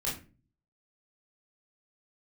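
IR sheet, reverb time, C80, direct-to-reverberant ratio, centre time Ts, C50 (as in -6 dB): 0.35 s, 13.5 dB, -6.5 dB, 34 ms, 6.5 dB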